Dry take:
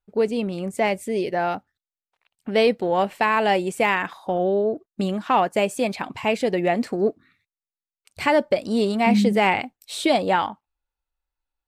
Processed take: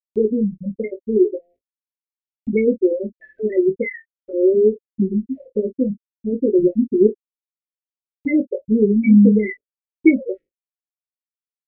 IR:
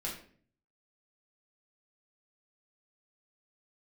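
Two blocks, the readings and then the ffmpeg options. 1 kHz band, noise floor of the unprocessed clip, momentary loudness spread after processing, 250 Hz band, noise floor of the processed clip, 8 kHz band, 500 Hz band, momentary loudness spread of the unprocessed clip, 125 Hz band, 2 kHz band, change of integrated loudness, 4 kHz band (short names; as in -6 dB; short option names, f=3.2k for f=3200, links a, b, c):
under -40 dB, under -85 dBFS, 14 LU, +7.5 dB, under -85 dBFS, under -40 dB, +3.0 dB, 8 LU, +5.0 dB, -7.0 dB, +3.5 dB, under -40 dB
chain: -filter_complex "[0:a]asplit=2[a][b];[b]alimiter=limit=-16.5dB:level=0:latency=1:release=143,volume=-3dB[c];[a][c]amix=inputs=2:normalize=0,afftfilt=real='re*gte(hypot(re,im),0.631)':imag='im*gte(hypot(re,im),0.631)':win_size=1024:overlap=0.75,asuperstop=centerf=1000:order=20:qfactor=0.72,aecho=1:1:3.1:0.43,acompressor=mode=upward:threshold=-39dB:ratio=2.5,lowshelf=f=160:g=6.5,asplit=2[d][e];[e]aecho=0:1:19|45:0.562|0.133[f];[d][f]amix=inputs=2:normalize=0,adynamicequalizer=threshold=0.0141:dfrequency=1500:dqfactor=0.7:tfrequency=1500:tqfactor=0.7:attack=5:release=100:ratio=0.375:range=2:mode=cutabove:tftype=highshelf,volume=2.5dB"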